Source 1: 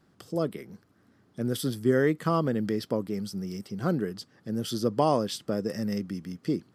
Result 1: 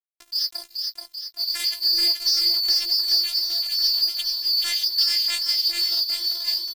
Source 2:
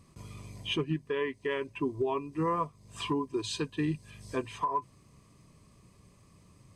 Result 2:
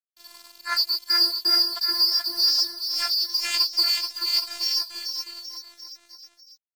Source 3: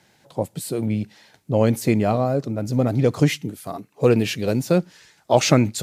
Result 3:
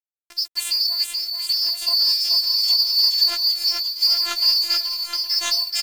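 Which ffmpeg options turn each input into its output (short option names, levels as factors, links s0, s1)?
-filter_complex "[0:a]afftfilt=real='real(if(lt(b,272),68*(eq(floor(b/68),0)*1+eq(floor(b/68),1)*2+eq(floor(b/68),2)*3+eq(floor(b/68),3)*0)+mod(b,68),b),0)':imag='imag(if(lt(b,272),68*(eq(floor(b/68),0)*1+eq(floor(b/68),1)*2+eq(floor(b/68),2)*3+eq(floor(b/68),3)*0)+mod(b,68),b),0)':win_size=2048:overlap=0.75,agate=range=0.002:threshold=0.00224:ratio=16:detection=peak,acompressor=threshold=0.0398:ratio=5,asplit=2[s0][s1];[s1]adelay=15,volume=0.211[s2];[s0][s2]amix=inputs=2:normalize=0,flanger=delay=7.3:depth=8.1:regen=9:speed=1.6:shape=sinusoidal,asplit=2[s3][s4];[s4]highpass=f=720:p=1,volume=2.82,asoftclip=type=tanh:threshold=0.112[s5];[s3][s5]amix=inputs=2:normalize=0,lowpass=f=4300:p=1,volume=0.501,equalizer=f=89:w=0.43:g=-3,afftfilt=real='hypot(re,im)*cos(PI*b)':imag='0':win_size=512:overlap=0.75,aeval=exprs='sgn(val(0))*max(abs(val(0))-0.00447,0)':c=same,dynaudnorm=f=140:g=3:m=3.98,aecho=1:1:430|817|1165|1479|1761:0.631|0.398|0.251|0.158|0.1,adynamicequalizer=threshold=0.0158:dfrequency=3000:dqfactor=0.7:tfrequency=3000:tqfactor=0.7:attack=5:release=100:ratio=0.375:range=2.5:mode=boostabove:tftype=highshelf"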